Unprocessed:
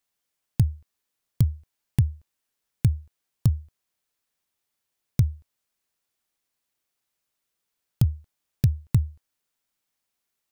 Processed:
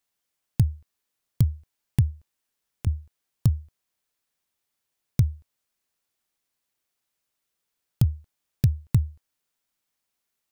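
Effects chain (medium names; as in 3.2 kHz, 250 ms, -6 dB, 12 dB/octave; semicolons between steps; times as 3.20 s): 2.10–2.87 s: compression, threshold -36 dBFS, peak gain reduction 19.5 dB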